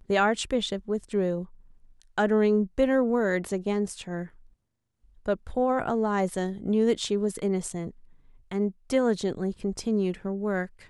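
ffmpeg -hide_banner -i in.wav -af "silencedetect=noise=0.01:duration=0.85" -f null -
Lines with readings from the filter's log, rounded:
silence_start: 4.27
silence_end: 5.26 | silence_duration: 0.99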